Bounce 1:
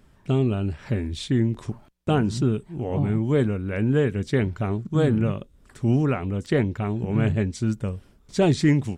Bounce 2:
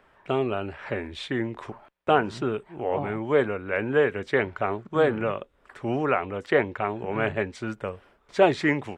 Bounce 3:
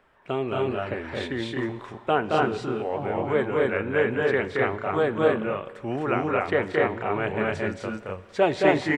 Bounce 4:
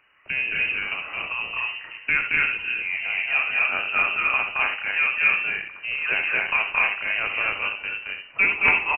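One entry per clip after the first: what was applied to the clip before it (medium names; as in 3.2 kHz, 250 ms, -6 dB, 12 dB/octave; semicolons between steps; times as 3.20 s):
three-band isolator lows -21 dB, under 450 Hz, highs -19 dB, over 2.8 kHz; trim +7.5 dB
on a send: loudspeakers at several distances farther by 76 m -3 dB, 87 m -1 dB; on the sum: Schroeder reverb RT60 2.1 s, combs from 33 ms, DRR 16.5 dB; trim -2.5 dB
early reflections 68 ms -9.5 dB, 78 ms -11.5 dB; integer overflow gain 5.5 dB; frequency inversion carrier 2.9 kHz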